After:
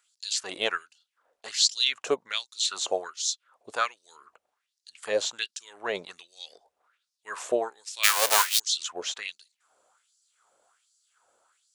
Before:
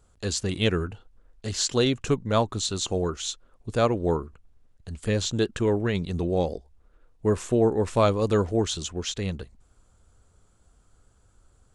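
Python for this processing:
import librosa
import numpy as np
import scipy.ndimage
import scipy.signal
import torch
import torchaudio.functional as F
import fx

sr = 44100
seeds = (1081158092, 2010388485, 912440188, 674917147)

y = fx.envelope_flatten(x, sr, power=0.1, at=(8.03, 8.58), fade=0.02)
y = fx.filter_lfo_highpass(y, sr, shape='sine', hz=1.3, low_hz=560.0, high_hz=5200.0, q=3.1)
y = y * 10.0 ** (-1.0 / 20.0)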